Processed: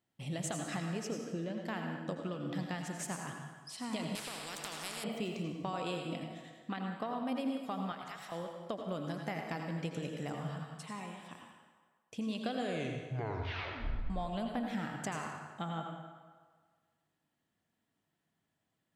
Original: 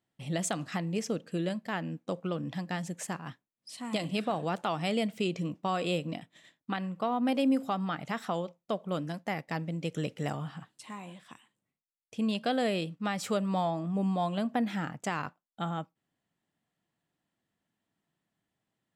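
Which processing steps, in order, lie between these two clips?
1.15–1.63 air absorption 230 m; compressor, threshold -34 dBFS, peak gain reduction 11 dB; 7.92–8.32 passive tone stack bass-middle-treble 10-0-10; 12.55 tape stop 1.55 s; reverb RT60 1.6 s, pre-delay 80 ms, DRR 2 dB; 4.15–5.04 spectral compressor 4:1; gain -1.5 dB

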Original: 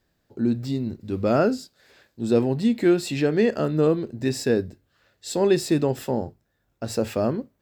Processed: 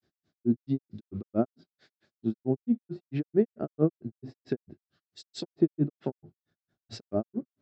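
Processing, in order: treble ducked by the level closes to 930 Hz, closed at -20.5 dBFS; speaker cabinet 110–6000 Hz, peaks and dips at 160 Hz +4 dB, 350 Hz +4 dB, 500 Hz -8 dB, 950 Hz -9 dB, 1800 Hz -5 dB, 2600 Hz -5 dB; grains 0.123 s, grains 4.5/s, pitch spread up and down by 0 st

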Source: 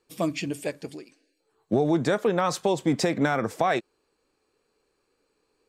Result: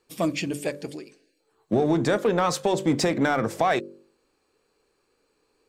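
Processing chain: de-hum 48.3 Hz, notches 12; in parallel at -7.5 dB: overloaded stage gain 26 dB

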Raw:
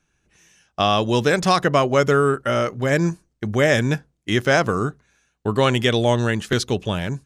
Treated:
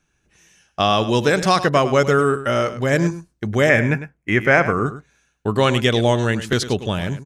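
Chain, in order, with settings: 3.69–4.86 resonant high shelf 2900 Hz -8.5 dB, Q 3; on a send: echo 0.103 s -13 dB; on the sum: gain +1 dB

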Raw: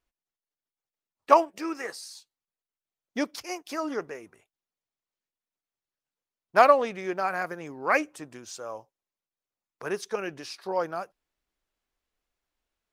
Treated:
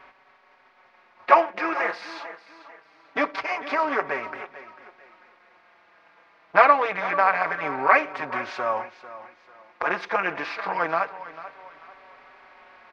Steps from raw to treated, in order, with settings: per-bin compression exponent 0.6; graphic EQ 250/1000/2000/4000/8000 Hz -4/+5/+11/+8/-7 dB; in parallel at -0.5 dB: compressor, threshold -30 dBFS, peak gain reduction 24 dB; on the sum: tape spacing loss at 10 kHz 24 dB; on a send: feedback echo 0.445 s, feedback 33%, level -15 dB; on the sum: endless flanger 4.8 ms -0.25 Hz

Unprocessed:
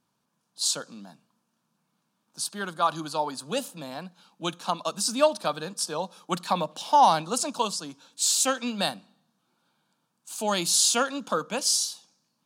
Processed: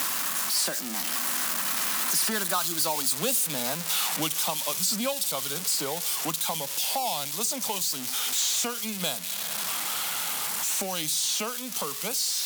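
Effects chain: switching spikes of -18 dBFS; Doppler pass-by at 3.04, 37 m/s, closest 26 m; three-band squash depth 100%; gain +5.5 dB

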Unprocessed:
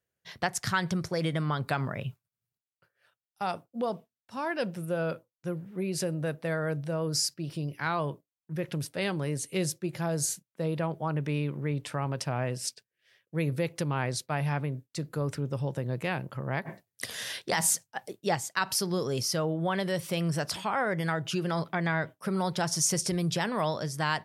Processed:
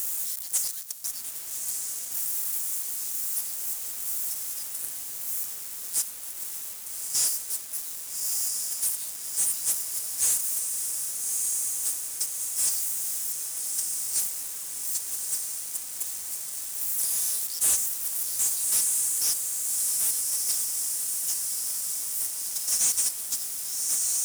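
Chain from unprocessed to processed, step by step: zero-crossing step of -30 dBFS; inverse Chebyshev high-pass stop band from 1300 Hz, stop band 80 dB; on a send: diffused feedback echo 1.252 s, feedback 62%, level -5.5 dB; on the sum: sample leveller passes 5; gain -5.5 dB

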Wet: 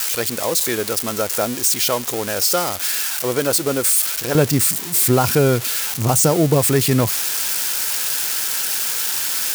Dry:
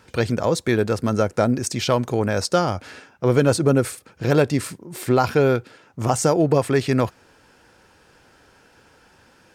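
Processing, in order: switching spikes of -11.5 dBFS; bell 120 Hz -11 dB 2.2 oct, from 4.35 s +5 dB

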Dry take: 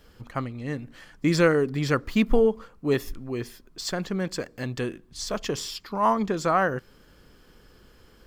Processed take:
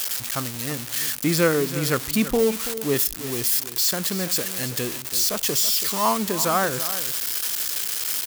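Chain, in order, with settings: switching spikes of -15 dBFS; HPF 52 Hz; on a send: echo 0.331 s -13 dB

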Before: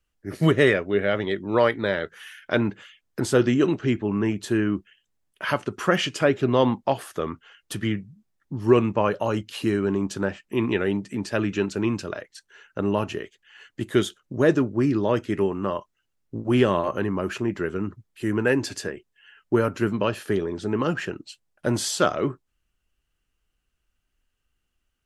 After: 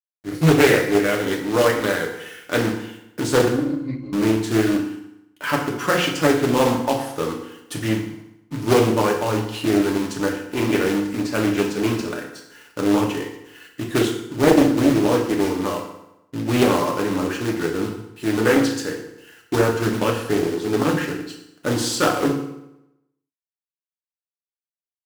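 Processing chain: HPF 100 Hz 12 dB/oct; notch 640 Hz, Q 14; companded quantiser 4-bit; 3.48–4.13 octave resonator C, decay 0.17 s; FDN reverb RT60 0.88 s, low-frequency decay 1×, high-frequency decay 0.8×, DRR -0.5 dB; Doppler distortion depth 0.53 ms

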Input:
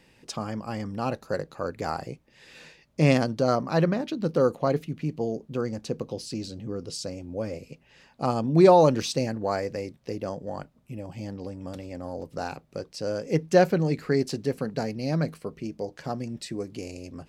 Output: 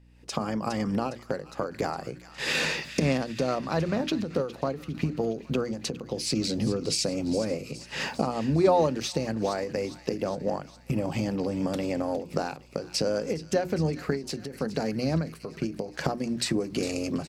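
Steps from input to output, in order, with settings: recorder AGC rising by 50 dB/s; HPF 120 Hz 24 dB/oct; gate -33 dBFS, range -10 dB; notches 60/120/180/240/300/360 Hz; hum 60 Hz, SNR 28 dB; harmoniser -12 st -17 dB; on a send: thin delay 0.41 s, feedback 59%, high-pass 1500 Hz, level -13 dB; on the sum: maximiser +3 dB; ending taper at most 140 dB/s; gain -8 dB

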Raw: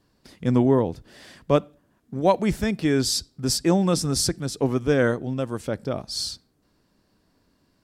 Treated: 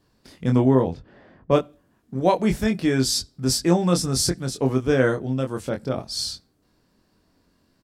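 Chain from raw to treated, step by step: 0.75–1.52 low-pass opened by the level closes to 810 Hz, open at -18 dBFS; doubler 23 ms -5 dB

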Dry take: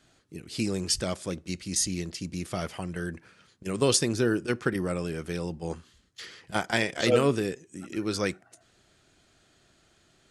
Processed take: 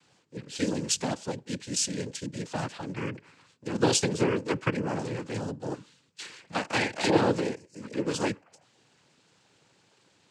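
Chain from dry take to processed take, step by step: 5.71–6.26 comb 5.7 ms, depth 70%; noise vocoder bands 8

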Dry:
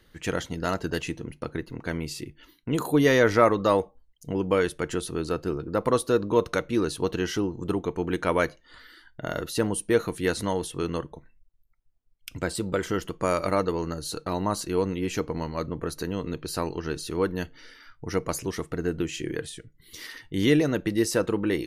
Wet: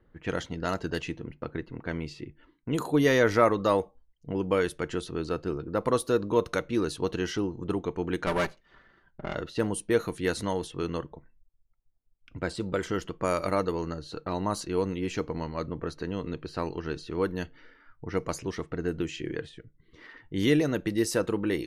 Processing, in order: 8.26–9.35 minimum comb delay 5.1 ms; low-pass opened by the level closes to 1100 Hz, open at -21.5 dBFS; gain -2.5 dB

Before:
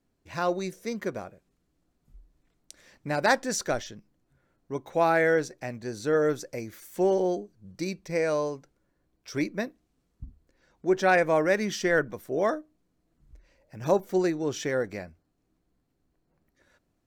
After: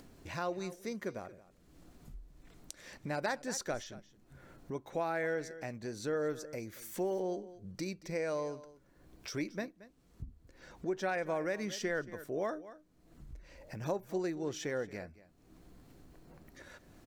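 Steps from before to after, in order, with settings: upward compressor, threshold -29 dBFS; echo 0.226 s -18.5 dB; compressor, threshold -23 dBFS, peak gain reduction 7 dB; gain -7.5 dB

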